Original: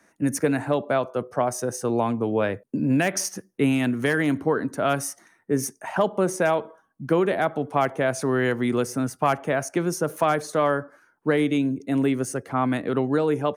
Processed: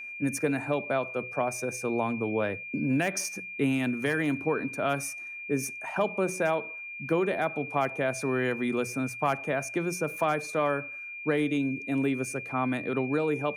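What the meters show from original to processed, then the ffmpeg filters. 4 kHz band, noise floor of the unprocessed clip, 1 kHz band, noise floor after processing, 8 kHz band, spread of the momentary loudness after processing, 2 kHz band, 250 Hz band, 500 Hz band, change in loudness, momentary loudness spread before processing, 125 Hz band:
-5.5 dB, -65 dBFS, -5.5 dB, -41 dBFS, -5.5 dB, 5 LU, -1.5 dB, -5.5 dB, -5.5 dB, -5.0 dB, 5 LU, -6.0 dB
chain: -af "bandreject=f=60:t=h:w=6,bandreject=f=120:t=h:w=6,bandreject=f=180:t=h:w=6,aeval=exprs='val(0)+0.0251*sin(2*PI*2400*n/s)':c=same,volume=-5.5dB"

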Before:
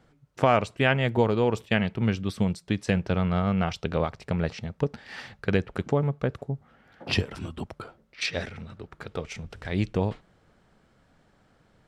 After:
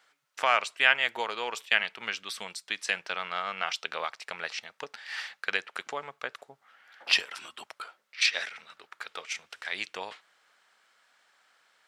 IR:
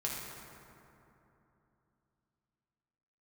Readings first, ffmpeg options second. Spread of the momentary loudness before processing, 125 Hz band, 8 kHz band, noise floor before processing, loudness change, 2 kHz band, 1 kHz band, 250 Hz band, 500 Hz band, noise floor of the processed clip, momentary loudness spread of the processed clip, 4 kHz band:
16 LU, under -30 dB, +5.5 dB, -64 dBFS, -2.5 dB, +4.5 dB, -2.0 dB, -25.5 dB, -11.5 dB, -73 dBFS, 17 LU, +5.5 dB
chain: -af "highpass=1.4k,volume=5.5dB"

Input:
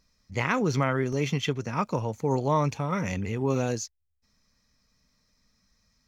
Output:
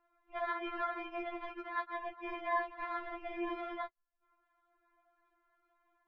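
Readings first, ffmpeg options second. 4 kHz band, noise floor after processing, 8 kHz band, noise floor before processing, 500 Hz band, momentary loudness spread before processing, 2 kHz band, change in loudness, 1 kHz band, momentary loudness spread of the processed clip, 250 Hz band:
-15.0 dB, -81 dBFS, n/a, -75 dBFS, -13.0 dB, 6 LU, -7.5 dB, -11.5 dB, -6.5 dB, 8 LU, -16.0 dB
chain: -filter_complex "[0:a]acrusher=samples=16:mix=1:aa=0.000001,afftfilt=real='hypot(re,im)*cos(2*PI*random(0))':imag='hypot(re,im)*sin(2*PI*random(1))':win_size=512:overlap=0.75,lowpass=f=3.3k:w=0.5412,lowpass=f=3.3k:w=1.3066,acrossover=split=470 2400:gain=0.178 1 0.126[a][b][c];[a][b][c]amix=inputs=3:normalize=0,acompressor=threshold=-45dB:ratio=2.5,equalizer=f=420:t=o:w=0.76:g=-7,bandreject=f=50:t=h:w=6,bandreject=f=100:t=h:w=6,bandreject=f=150:t=h:w=6,bandreject=f=200:t=h:w=6,bandreject=f=250:t=h:w=6,afftfilt=real='re*4*eq(mod(b,16),0)':imag='im*4*eq(mod(b,16),0)':win_size=2048:overlap=0.75,volume=11.5dB"

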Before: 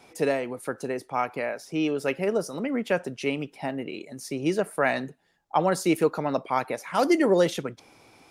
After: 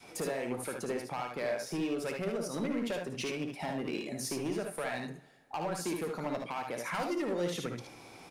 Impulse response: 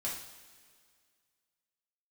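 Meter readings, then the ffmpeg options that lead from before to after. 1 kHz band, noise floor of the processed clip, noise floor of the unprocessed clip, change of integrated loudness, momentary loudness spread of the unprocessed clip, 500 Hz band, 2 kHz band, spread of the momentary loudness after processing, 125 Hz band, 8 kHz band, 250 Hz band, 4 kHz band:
-10.0 dB, -53 dBFS, -61 dBFS, -9.0 dB, 11 LU, -10.0 dB, -8.5 dB, 5 LU, -6.5 dB, -2.5 dB, -8.5 dB, -5.0 dB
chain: -filter_complex "[0:a]adynamicequalizer=threshold=0.0282:dfrequency=500:dqfactor=0.94:tfrequency=500:tqfactor=0.94:attack=5:release=100:ratio=0.375:range=2:mode=cutabove:tftype=bell,acompressor=threshold=-32dB:ratio=10,volume=32dB,asoftclip=hard,volume=-32dB,aecho=1:1:57|74:0.422|0.562,asplit=2[a][b];[1:a]atrim=start_sample=2205[c];[b][c]afir=irnorm=-1:irlink=0,volume=-12.5dB[d];[a][d]amix=inputs=2:normalize=0"

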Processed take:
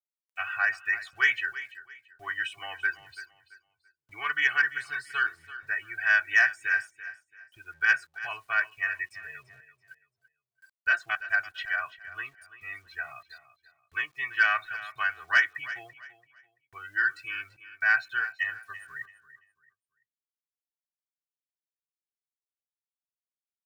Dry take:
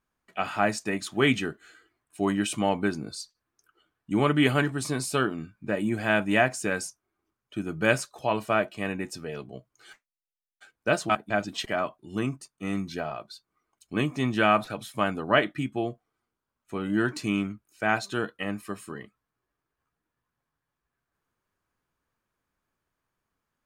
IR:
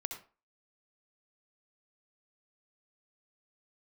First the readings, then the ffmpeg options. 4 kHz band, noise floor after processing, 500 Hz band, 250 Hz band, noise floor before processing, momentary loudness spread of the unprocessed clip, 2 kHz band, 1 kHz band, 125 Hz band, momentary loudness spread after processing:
-4.5 dB, under -85 dBFS, -22.0 dB, under -30 dB, under -85 dBFS, 15 LU, +6.5 dB, -6.0 dB, under -25 dB, 18 LU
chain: -filter_complex "[0:a]afftdn=nr=22:nf=-38,acrossover=split=3100[a][b];[b]acompressor=threshold=-51dB:ratio=4:attack=1:release=60[c];[a][c]amix=inputs=2:normalize=0,agate=range=-9dB:threshold=-56dB:ratio=16:detection=peak,aecho=1:1:2.7:0.92,acrossover=split=130[d][e];[d]acompressor=threshold=-55dB:ratio=16[f];[e]highpass=f=1.7k:t=q:w=4.9[g];[f][g]amix=inputs=2:normalize=0,acrusher=bits=9:mix=0:aa=0.000001,asoftclip=type=tanh:threshold=-5dB,asplit=2[h][i];[i]aecho=0:1:336|672|1008:0.178|0.0498|0.0139[j];[h][j]amix=inputs=2:normalize=0,volume=-5.5dB"

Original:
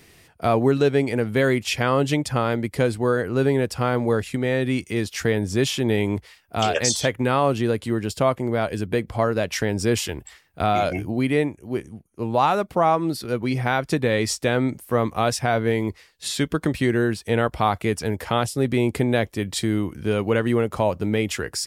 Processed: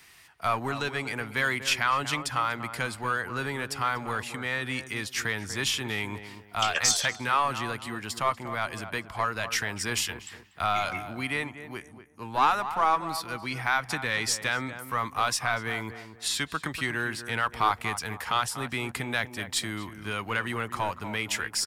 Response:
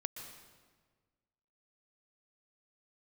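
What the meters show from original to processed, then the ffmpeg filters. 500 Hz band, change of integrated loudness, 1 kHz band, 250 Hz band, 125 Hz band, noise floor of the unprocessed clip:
-15.0 dB, -6.0 dB, -2.5 dB, -14.5 dB, -13.0 dB, -55 dBFS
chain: -filter_complex "[0:a]lowshelf=f=710:t=q:w=1.5:g=-11.5,asplit=2[a][b];[b]adelay=241,lowpass=f=1.6k:p=1,volume=-11dB,asplit=2[c][d];[d]adelay=241,lowpass=f=1.6k:p=1,volume=0.33,asplit=2[e][f];[f]adelay=241,lowpass=f=1.6k:p=1,volume=0.33,asplit=2[g][h];[h]adelay=241,lowpass=f=1.6k:p=1,volume=0.33[i];[a][c][e][g][i]amix=inputs=5:normalize=0,aeval=exprs='0.473*(cos(1*acos(clip(val(0)/0.473,-1,1)))-cos(1*PI/2))+0.0841*(cos(2*acos(clip(val(0)/0.473,-1,1)))-cos(2*PI/2))':c=same,acrossover=split=350|930[j][k][l];[k]aeval=exprs='clip(val(0),-1,0.00794)':c=same[m];[j][m][l]amix=inputs=3:normalize=0,volume=-1dB"

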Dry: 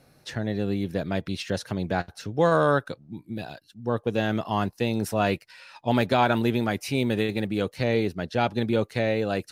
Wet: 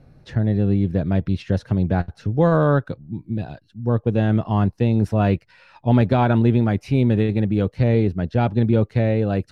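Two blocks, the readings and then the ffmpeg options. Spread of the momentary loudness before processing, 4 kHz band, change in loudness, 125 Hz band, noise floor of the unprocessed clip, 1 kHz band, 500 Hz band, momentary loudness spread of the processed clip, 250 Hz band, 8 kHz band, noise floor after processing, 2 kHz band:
11 LU, -6.0 dB, +6.0 dB, +12.0 dB, -60 dBFS, +0.5 dB, +2.5 dB, 11 LU, +7.0 dB, under -10 dB, -58 dBFS, -2.0 dB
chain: -af "aemphasis=mode=reproduction:type=riaa"

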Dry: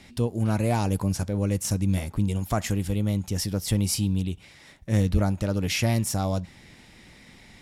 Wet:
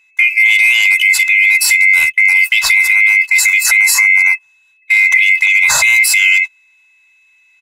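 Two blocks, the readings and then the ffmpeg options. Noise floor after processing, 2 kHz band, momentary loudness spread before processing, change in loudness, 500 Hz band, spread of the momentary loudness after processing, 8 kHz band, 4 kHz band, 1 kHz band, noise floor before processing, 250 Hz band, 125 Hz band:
-53 dBFS, +34.0 dB, 5 LU, +18.0 dB, under -10 dB, 3 LU, +17.5 dB, +17.5 dB, +5.0 dB, -52 dBFS, under -30 dB, under -25 dB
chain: -af "afftfilt=real='real(if(lt(b,920),b+92*(1-2*mod(floor(b/92),2)),b),0)':imag='imag(if(lt(b,920),b+92*(1-2*mod(floor(b/92),2)),b),0)':win_size=2048:overlap=0.75,aeval=exprs='val(0)+0.01*sin(2*PI*2600*n/s)':c=same,highshelf=f=2.1k:g=11.5,bandreject=f=55.72:t=h:w=4,bandreject=f=111.44:t=h:w=4,bandreject=f=167.16:t=h:w=4,bandreject=f=222.88:t=h:w=4,areverse,acompressor=mode=upward:threshold=-30dB:ratio=2.5,areverse,aecho=1:1:2:0.58,agate=range=-38dB:threshold=-21dB:ratio=16:detection=peak,firequalizer=gain_entry='entry(180,0);entry(270,-29);entry(760,11);entry(5700,5)':delay=0.05:min_phase=1,acompressor=threshold=-11dB:ratio=6,alimiter=level_in=10dB:limit=-1dB:release=50:level=0:latency=1,volume=-1dB"

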